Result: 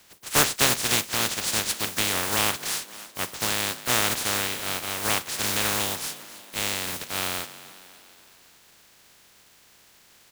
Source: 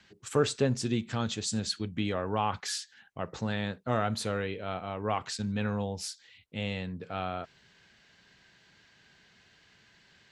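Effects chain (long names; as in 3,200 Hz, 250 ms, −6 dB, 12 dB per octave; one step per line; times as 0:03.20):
compressing power law on the bin magnitudes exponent 0.16
echo with shifted repeats 277 ms, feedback 53%, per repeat +48 Hz, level −16 dB
level +6 dB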